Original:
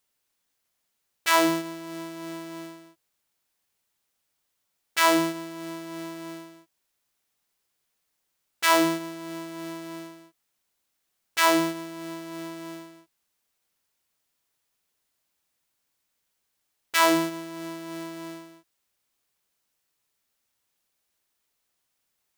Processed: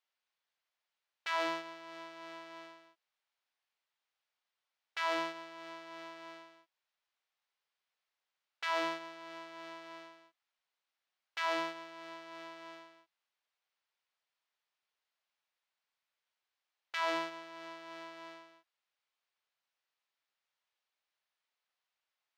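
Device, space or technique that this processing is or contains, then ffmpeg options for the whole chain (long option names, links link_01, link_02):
DJ mixer with the lows and highs turned down: -filter_complex "[0:a]acrossover=split=530 4900:gain=0.1 1 0.0631[link_01][link_02][link_03];[link_01][link_02][link_03]amix=inputs=3:normalize=0,alimiter=limit=-17.5dB:level=0:latency=1,volume=-5.5dB"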